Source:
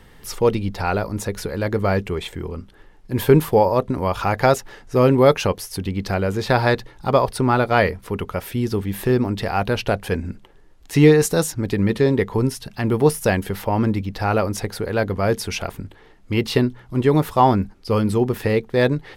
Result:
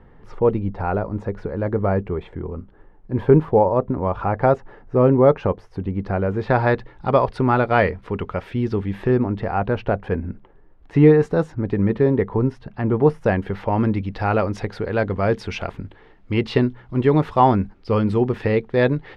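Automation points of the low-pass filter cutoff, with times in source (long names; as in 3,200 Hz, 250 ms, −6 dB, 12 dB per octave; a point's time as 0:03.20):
0:05.92 1,200 Hz
0:07.10 2,600 Hz
0:08.87 2,600 Hz
0:09.40 1,500 Hz
0:13.15 1,500 Hz
0:13.87 3,000 Hz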